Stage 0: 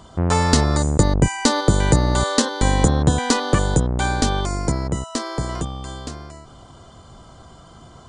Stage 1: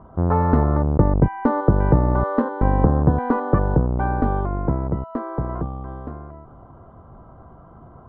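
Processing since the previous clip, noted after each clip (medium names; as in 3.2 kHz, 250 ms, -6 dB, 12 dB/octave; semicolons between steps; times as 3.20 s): low-pass 1.3 kHz 24 dB/octave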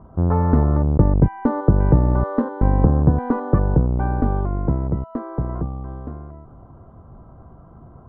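bass shelf 430 Hz +7.5 dB; trim -5 dB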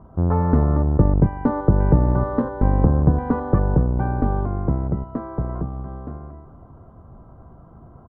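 feedback delay 235 ms, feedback 42%, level -15 dB; trim -1 dB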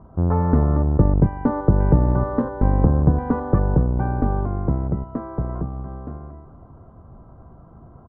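distance through air 110 m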